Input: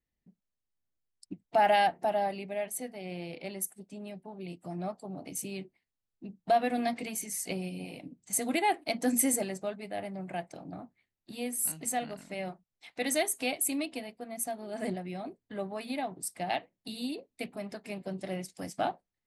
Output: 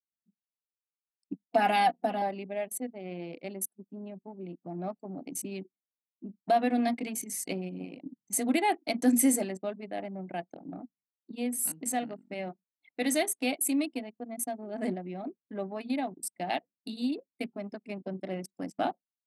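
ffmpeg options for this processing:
ffmpeg -i in.wav -filter_complex "[0:a]asettb=1/sr,asplit=3[link_01][link_02][link_03];[link_01]atrim=end=1.334[link_04];[link_02]atrim=start=1.33:end=2.22,asetpts=PTS-STARTPTS,afade=type=in:duration=0.004:curve=qsin,afade=type=out:start_time=0.886:duration=0.004:curve=qsin,aecho=1:1:4.1:0.74,atrim=end_sample=39249[link_05];[link_03]atrim=start=2.216[link_06];[link_04][link_05]acrossfade=duration=0.004:curve1=hsin:curve2=qsin[link_07];[link_07][link_06]acrossfade=duration=0.004:curve1=qsin:curve2=hsin,anlmdn=0.251,highpass=180,equalizer=frequency=260:width_type=o:width=0.73:gain=7" out.wav

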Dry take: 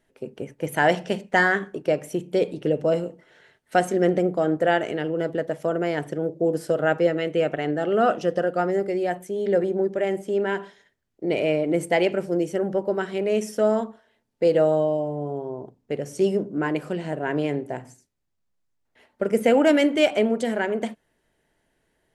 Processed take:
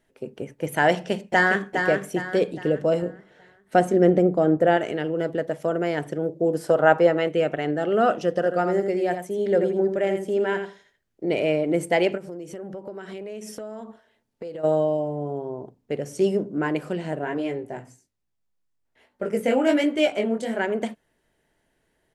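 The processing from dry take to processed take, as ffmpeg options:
ffmpeg -i in.wav -filter_complex "[0:a]asplit=2[link_01][link_02];[link_02]afade=type=in:start_time=0.91:duration=0.01,afade=type=out:start_time=1.73:duration=0.01,aecho=0:1:410|820|1230|1640|2050:0.501187|0.200475|0.08019|0.032076|0.0128304[link_03];[link_01][link_03]amix=inputs=2:normalize=0,asettb=1/sr,asplit=3[link_04][link_05][link_06];[link_04]atrim=end=3.024[link_07];[link_05]atrim=start=3.02:end=4.77,asetpts=PTS-STARTPTS,afade=type=in:duration=0.004:curve=qsin,afade=type=out:start_time=1.746:duration=0.004:curve=qsin,tiltshelf=frequency=970:gain=4.5[link_08];[link_06]atrim=start=4.766[link_09];[link_07][link_08]acrossfade=duration=0.004:curve1=hsin:curve2=qsin[link_10];[link_10][link_09]acrossfade=duration=0.004:curve1=qsin:curve2=hsin,asettb=1/sr,asplit=3[link_11][link_12][link_13];[link_11]atrim=end=6.644[link_14];[link_12]atrim=start=6.64:end=7.29,asetpts=PTS-STARTPTS,afade=type=in:duration=0.004:curve=qsin,afade=type=out:start_time=0.646:duration=0.004:curve=qsin,equalizer=frequency=940:width_type=o:width=1.1:gain=10.5[link_15];[link_13]atrim=start=7.286[link_16];[link_14][link_15]acrossfade=duration=0.004:curve1=hsin:curve2=qsin[link_17];[link_17][link_16]acrossfade=duration=0.004:curve1=qsin:curve2=hsin,asplit=3[link_18][link_19][link_20];[link_18]afade=type=out:start_time=8.4:duration=0.02[link_21];[link_19]aecho=1:1:83:0.398,afade=type=in:start_time=8.4:duration=0.02,afade=type=out:start_time=11.29:duration=0.02[link_22];[link_20]afade=type=in:start_time=11.29:duration=0.02[link_23];[link_21][link_22][link_23]amix=inputs=3:normalize=0,asplit=3[link_24][link_25][link_26];[link_24]afade=type=out:start_time=12.16:duration=0.02[link_27];[link_25]acompressor=threshold=-32dB:ratio=8:attack=3.2:release=140:knee=1:detection=peak,afade=type=in:start_time=12.16:duration=0.02,afade=type=out:start_time=14.63:duration=0.02[link_28];[link_26]afade=type=in:start_time=14.63:duration=0.02[link_29];[link_27][link_28][link_29]amix=inputs=3:normalize=0,asplit=3[link_30][link_31][link_32];[link_30]afade=type=out:start_time=17.24:duration=0.02[link_33];[link_31]flanger=delay=16:depth=7.1:speed=1.2,afade=type=in:start_time=17.24:duration=0.02,afade=type=out:start_time=20.56:duration=0.02[link_34];[link_32]afade=type=in:start_time=20.56:duration=0.02[link_35];[link_33][link_34][link_35]amix=inputs=3:normalize=0" out.wav

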